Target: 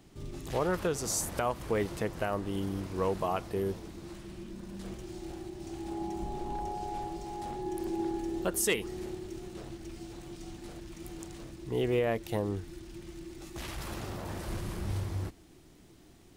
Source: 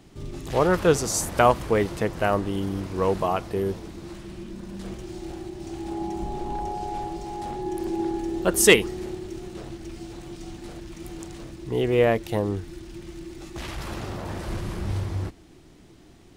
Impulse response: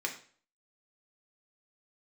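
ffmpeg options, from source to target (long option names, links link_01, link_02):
-af "asetnsamples=nb_out_samples=441:pad=0,asendcmd='13.42 highshelf g 11',highshelf=frequency=9600:gain=5.5,alimiter=limit=-13.5dB:level=0:latency=1:release=217,volume=-6dB"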